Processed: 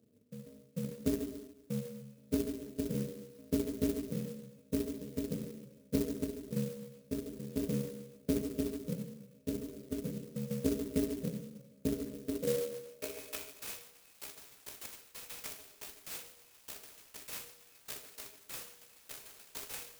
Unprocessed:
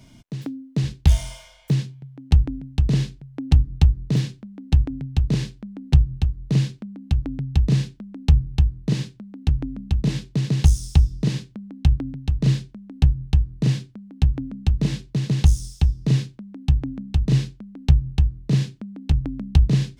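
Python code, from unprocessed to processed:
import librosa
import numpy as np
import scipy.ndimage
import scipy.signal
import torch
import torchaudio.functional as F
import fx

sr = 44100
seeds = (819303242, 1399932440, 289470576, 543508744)

y = fx.bit_reversed(x, sr, seeds[0], block=128)
y = fx.brickwall_bandstop(y, sr, low_hz=680.0, high_hz=2200.0)
y = fx.filter_sweep_bandpass(y, sr, from_hz=220.0, to_hz=7800.0, start_s=12.23, end_s=13.75, q=2.0)
y = scipy.signal.sosfilt(scipy.signal.butter(2, 92.0, 'highpass', fs=sr, output='sos'), y)
y = fx.bass_treble(y, sr, bass_db=-11, treble_db=-15)
y = y + 0.39 * np.pad(y, (int(2.7 * sr / 1000.0), 0))[:len(y)]
y = fx.echo_stepped(y, sr, ms=131, hz=340.0, octaves=1.4, feedback_pct=70, wet_db=-10)
y = fx.rev_plate(y, sr, seeds[1], rt60_s=0.97, hf_ratio=0.95, predelay_ms=0, drr_db=4.0)
y = fx.clock_jitter(y, sr, seeds[2], jitter_ms=0.092)
y = F.gain(torch.from_numpy(y), 1.0).numpy()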